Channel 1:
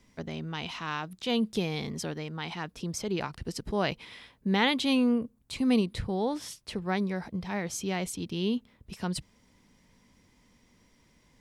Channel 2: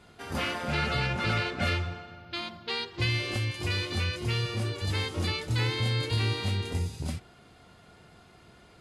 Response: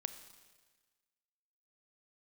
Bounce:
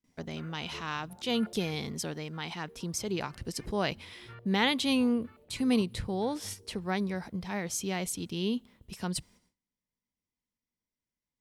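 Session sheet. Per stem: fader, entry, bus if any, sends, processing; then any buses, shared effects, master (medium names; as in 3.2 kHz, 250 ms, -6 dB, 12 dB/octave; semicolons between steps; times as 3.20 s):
-2.5 dB, 0.00 s, send -22 dB, gate -56 dBFS, range -9 dB; treble shelf 6.2 kHz +7.5 dB
-19.5 dB, 0.00 s, no send, square tremolo 1.4 Hz, depth 60%, duty 15%; step-sequenced low-pass 8.2 Hz 250–2000 Hz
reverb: on, RT60 1.4 s, pre-delay 28 ms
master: gate with hold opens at -60 dBFS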